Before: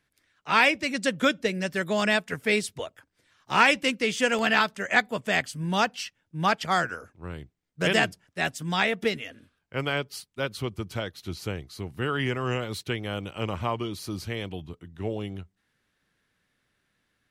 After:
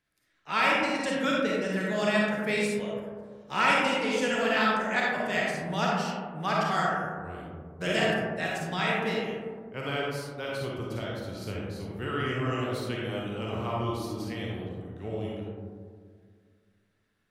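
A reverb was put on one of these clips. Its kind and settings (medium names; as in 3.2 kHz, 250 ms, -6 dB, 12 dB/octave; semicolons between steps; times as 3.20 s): algorithmic reverb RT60 1.9 s, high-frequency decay 0.25×, pre-delay 10 ms, DRR -4.5 dB; trim -8 dB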